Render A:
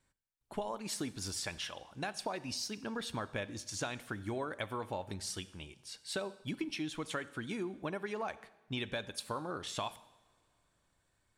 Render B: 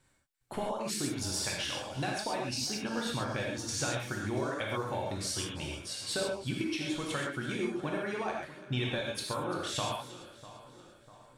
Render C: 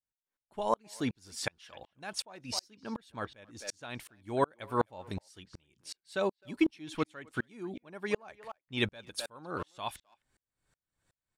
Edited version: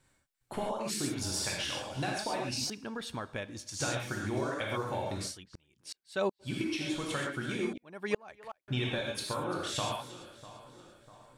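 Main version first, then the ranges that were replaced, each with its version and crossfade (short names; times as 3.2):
B
2.7–3.8 from A
5.3–6.47 from C, crossfade 0.16 s
7.73–8.68 from C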